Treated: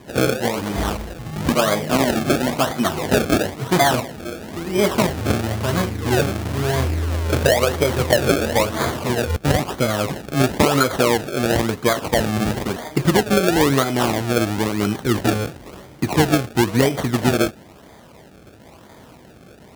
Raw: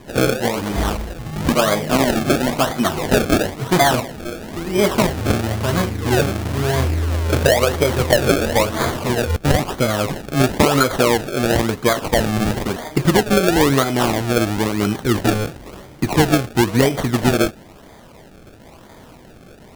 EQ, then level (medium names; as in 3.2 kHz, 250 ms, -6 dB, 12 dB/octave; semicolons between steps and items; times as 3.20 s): high-pass 55 Hz; -1.5 dB